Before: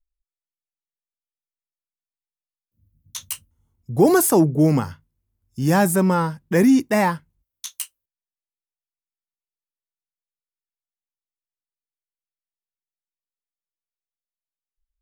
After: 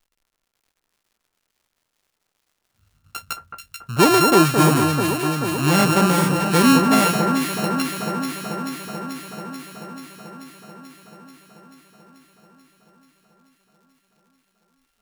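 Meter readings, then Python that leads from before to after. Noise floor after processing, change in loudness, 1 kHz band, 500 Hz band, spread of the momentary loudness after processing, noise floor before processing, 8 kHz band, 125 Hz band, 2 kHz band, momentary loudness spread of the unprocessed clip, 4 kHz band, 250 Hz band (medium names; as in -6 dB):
-76 dBFS, 0.0 dB, +5.5 dB, +0.5 dB, 21 LU, under -85 dBFS, +2.5 dB, +2.0 dB, +5.5 dB, 18 LU, +12.5 dB, +1.5 dB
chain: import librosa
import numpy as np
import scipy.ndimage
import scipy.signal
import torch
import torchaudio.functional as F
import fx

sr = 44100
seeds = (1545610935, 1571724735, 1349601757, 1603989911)

y = np.r_[np.sort(x[:len(x) // 32 * 32].reshape(-1, 32), axis=1).ravel(), x[len(x) // 32 * 32:]]
y = fx.dmg_crackle(y, sr, seeds[0], per_s=130.0, level_db=-53.0)
y = fx.echo_alternate(y, sr, ms=218, hz=1700.0, feedback_pct=85, wet_db=-4.5)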